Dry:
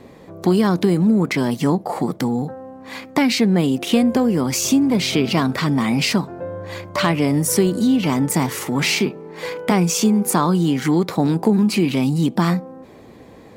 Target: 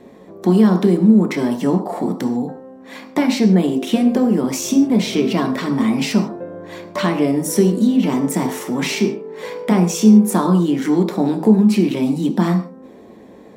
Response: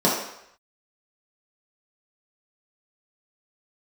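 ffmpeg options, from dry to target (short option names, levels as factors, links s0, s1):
-filter_complex "[0:a]asplit=2[s0][s1];[1:a]atrim=start_sample=2205,afade=t=out:st=0.21:d=0.01,atrim=end_sample=9702[s2];[s1][s2]afir=irnorm=-1:irlink=0,volume=0.106[s3];[s0][s3]amix=inputs=2:normalize=0,volume=0.562"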